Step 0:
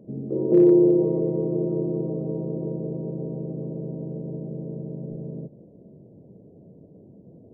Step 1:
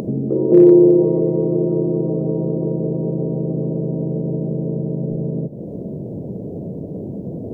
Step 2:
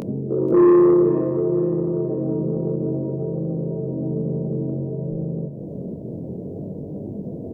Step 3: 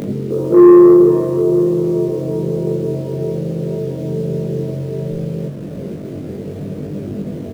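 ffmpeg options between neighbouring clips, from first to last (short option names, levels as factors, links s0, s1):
-af "acompressor=mode=upward:threshold=0.0891:ratio=2.5,volume=2.11"
-af "flanger=delay=19.5:depth=3.5:speed=0.57,asoftclip=type=tanh:threshold=0.355,aecho=1:1:485|970|1455:0.2|0.0678|0.0231"
-filter_complex "[0:a]asplit=2[s0][s1];[s1]acrusher=bits=5:mix=0:aa=0.000001,volume=0.266[s2];[s0][s2]amix=inputs=2:normalize=0,asplit=2[s3][s4];[s4]adelay=20,volume=0.75[s5];[s3][s5]amix=inputs=2:normalize=0,volume=1.12"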